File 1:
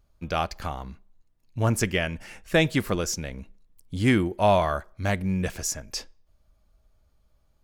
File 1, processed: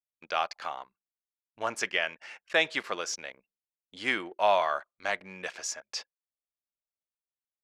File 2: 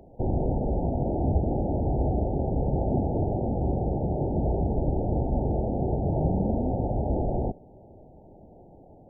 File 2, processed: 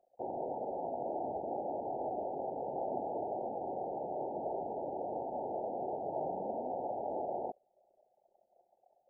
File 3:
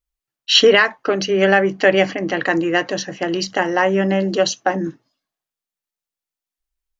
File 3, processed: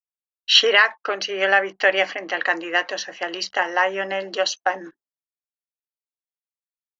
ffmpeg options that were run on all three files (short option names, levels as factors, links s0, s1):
-af "highpass=720,lowpass=5200,anlmdn=0.00631"